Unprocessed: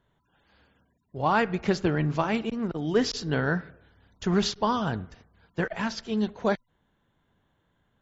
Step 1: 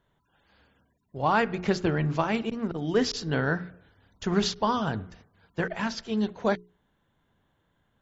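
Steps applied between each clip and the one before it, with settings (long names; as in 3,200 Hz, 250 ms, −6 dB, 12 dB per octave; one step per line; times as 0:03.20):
mains-hum notches 60/120/180/240/300/360/420 Hz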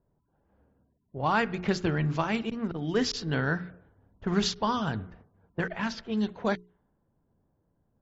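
dynamic equaliser 550 Hz, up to −4 dB, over −35 dBFS, Q 0.73
low-pass that shuts in the quiet parts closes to 610 Hz, open at −24 dBFS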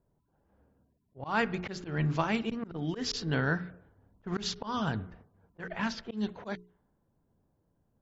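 volume swells 162 ms
level −1 dB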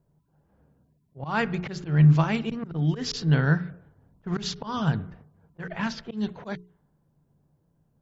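parametric band 150 Hz +12 dB 0.34 octaves
level +2.5 dB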